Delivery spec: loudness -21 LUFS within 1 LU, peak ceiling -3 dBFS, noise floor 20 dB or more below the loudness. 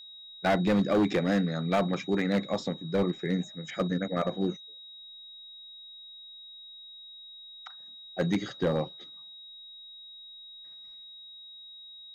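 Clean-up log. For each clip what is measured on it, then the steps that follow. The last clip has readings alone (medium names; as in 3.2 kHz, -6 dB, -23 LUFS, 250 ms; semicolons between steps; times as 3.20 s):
clipped samples 1.1%; clipping level -19.5 dBFS; steady tone 3.8 kHz; tone level -45 dBFS; loudness -29.0 LUFS; peak level -19.5 dBFS; loudness target -21.0 LUFS
-> clip repair -19.5 dBFS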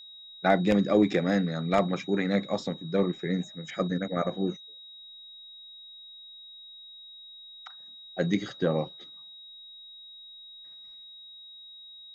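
clipped samples 0.0%; steady tone 3.8 kHz; tone level -45 dBFS
-> band-stop 3.8 kHz, Q 30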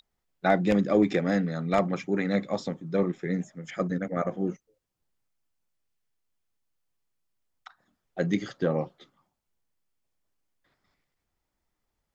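steady tone not found; loudness -28.0 LUFS; peak level -10.5 dBFS; loudness target -21.0 LUFS
-> trim +7 dB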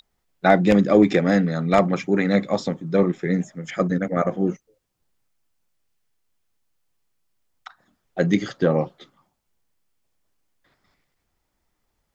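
loudness -21.0 LUFS; peak level -3.5 dBFS; noise floor -75 dBFS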